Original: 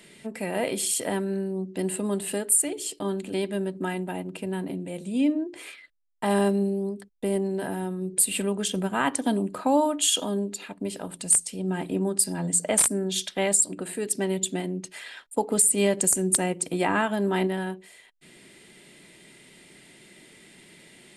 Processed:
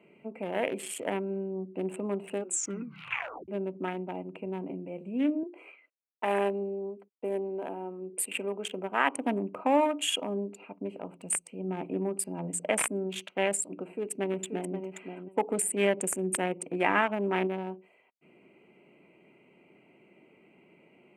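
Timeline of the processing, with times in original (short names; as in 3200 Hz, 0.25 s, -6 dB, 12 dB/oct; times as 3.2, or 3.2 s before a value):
2.36 tape stop 1.12 s
5.43–9.16 HPF 290 Hz
13.7–14.75 echo throw 0.53 s, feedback 15%, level -7 dB
whole clip: Wiener smoothing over 25 samples; HPF 380 Hz 6 dB/oct; resonant high shelf 3300 Hz -9 dB, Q 3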